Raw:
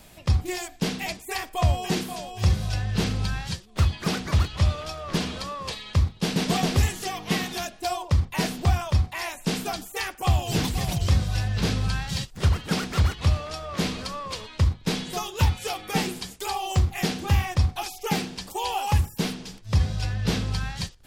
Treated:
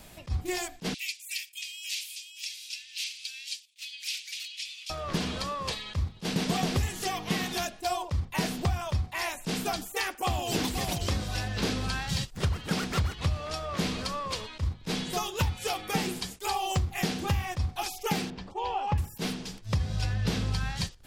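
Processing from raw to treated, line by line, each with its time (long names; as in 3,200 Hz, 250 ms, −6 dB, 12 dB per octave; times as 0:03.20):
0:00.94–0:04.90: elliptic high-pass filter 2,400 Hz, stop band 60 dB
0:09.96–0:12.07: low shelf with overshoot 190 Hz −7 dB, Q 1.5
0:18.30–0:18.98: head-to-tape spacing loss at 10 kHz 31 dB
whole clip: downward compressor, threshold −24 dBFS; level that may rise only so fast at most 390 dB per second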